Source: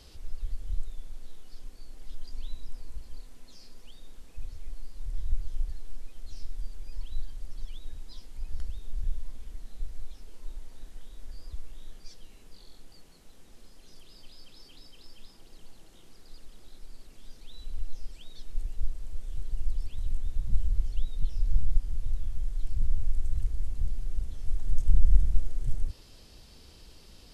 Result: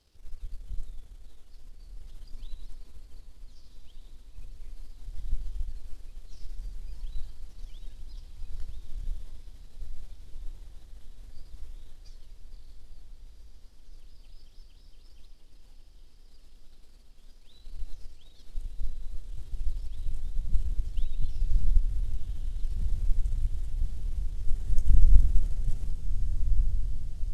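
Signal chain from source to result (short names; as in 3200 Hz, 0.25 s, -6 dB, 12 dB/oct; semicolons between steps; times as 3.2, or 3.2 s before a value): power-law curve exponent 1.4; diffused feedback echo 1.436 s, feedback 70%, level -7 dB; warbling echo 80 ms, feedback 79%, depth 161 cents, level -11.5 dB; gain +2.5 dB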